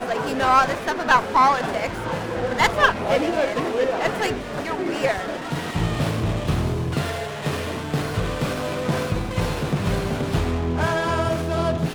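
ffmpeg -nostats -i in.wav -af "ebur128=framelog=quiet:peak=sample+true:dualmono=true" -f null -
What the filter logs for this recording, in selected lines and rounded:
Integrated loudness:
  I:         -19.6 LUFS
  Threshold: -29.6 LUFS
Loudness range:
  LRA:         5.3 LU
  Threshold: -40.1 LUFS
  LRA low:   -22.3 LUFS
  LRA high:  -17.0 LUFS
Sample peak:
  Peak:       -4.3 dBFS
True peak:
  Peak:       -4.3 dBFS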